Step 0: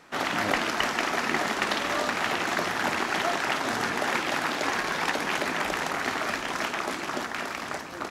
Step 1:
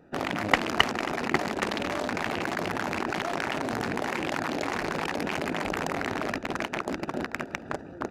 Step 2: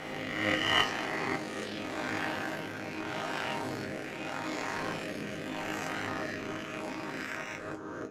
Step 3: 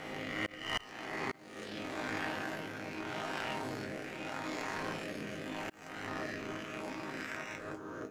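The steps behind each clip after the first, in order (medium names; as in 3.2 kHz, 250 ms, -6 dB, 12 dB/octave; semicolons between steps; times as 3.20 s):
local Wiener filter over 41 samples; level held to a coarse grid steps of 13 dB; peaking EQ 85 Hz +2.5 dB 1.5 oct; trim +8.5 dB
reverse spectral sustain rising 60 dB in 1.66 s; rotary cabinet horn 0.8 Hz; chord resonator G#2 major, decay 0.22 s; trim +3.5 dB
tracing distortion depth 0.046 ms; slow attack 470 ms; word length cut 12-bit, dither none; trim -3.5 dB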